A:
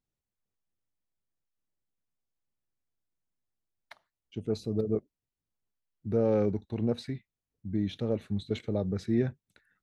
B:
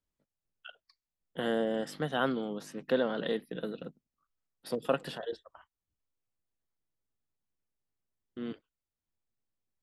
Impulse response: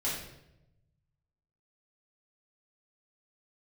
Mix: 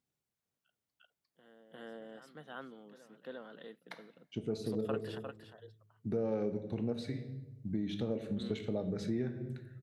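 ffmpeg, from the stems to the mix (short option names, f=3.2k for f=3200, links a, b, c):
-filter_complex "[0:a]volume=0.5dB,asplit=3[a][b][c];[b]volume=-12dB[d];[1:a]adynamicequalizer=threshold=0.00708:dfrequency=1400:dqfactor=1.2:tfrequency=1400:tqfactor=1.2:attack=5:release=100:ratio=0.375:range=2:mode=boostabove:tftype=bell,volume=-5dB,asplit=2[e][f];[f]volume=-13.5dB[g];[c]apad=whole_len=433104[h];[e][h]sidechaingate=range=-27dB:threshold=-53dB:ratio=16:detection=peak[i];[2:a]atrim=start_sample=2205[j];[d][j]afir=irnorm=-1:irlink=0[k];[g]aecho=0:1:352:1[l];[a][i][k][l]amix=inputs=4:normalize=0,highpass=99,acompressor=threshold=-34dB:ratio=3"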